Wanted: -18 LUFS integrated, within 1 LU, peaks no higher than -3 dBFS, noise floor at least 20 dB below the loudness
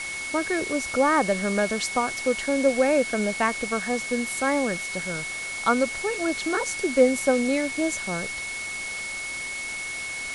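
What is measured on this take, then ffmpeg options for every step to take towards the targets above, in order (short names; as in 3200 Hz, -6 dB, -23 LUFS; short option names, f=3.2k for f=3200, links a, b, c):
steady tone 2200 Hz; tone level -31 dBFS; noise floor -33 dBFS; noise floor target -45 dBFS; loudness -25.0 LUFS; peak -6.5 dBFS; loudness target -18.0 LUFS
-> -af "bandreject=f=2.2k:w=30"
-af "afftdn=nr=12:nf=-33"
-af "volume=7dB,alimiter=limit=-3dB:level=0:latency=1"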